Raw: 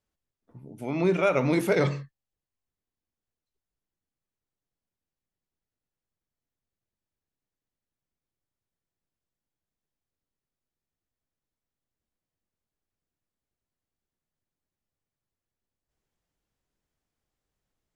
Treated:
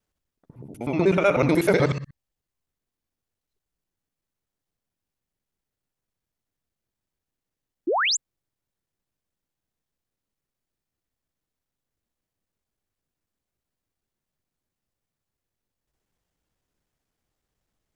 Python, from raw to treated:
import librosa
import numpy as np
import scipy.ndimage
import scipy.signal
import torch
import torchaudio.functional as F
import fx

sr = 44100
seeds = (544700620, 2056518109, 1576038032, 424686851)

y = fx.local_reverse(x, sr, ms=62.0)
y = fx.spec_paint(y, sr, seeds[0], shape='rise', start_s=7.87, length_s=0.3, low_hz=290.0, high_hz=8100.0, level_db=-26.0)
y = F.gain(torch.from_numpy(y), 4.0).numpy()